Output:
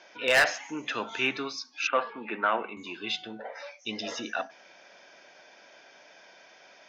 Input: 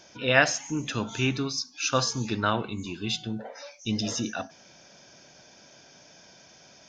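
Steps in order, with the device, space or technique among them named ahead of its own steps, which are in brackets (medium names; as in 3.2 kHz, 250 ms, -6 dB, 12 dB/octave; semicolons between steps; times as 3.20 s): megaphone (band-pass 470–3200 Hz; peaking EQ 2 kHz +4.5 dB 0.5 oct; hard clipper -18.5 dBFS, distortion -8 dB); 1.87–2.77 s: elliptic band-pass 180–2600 Hz, stop band 40 dB; trim +2.5 dB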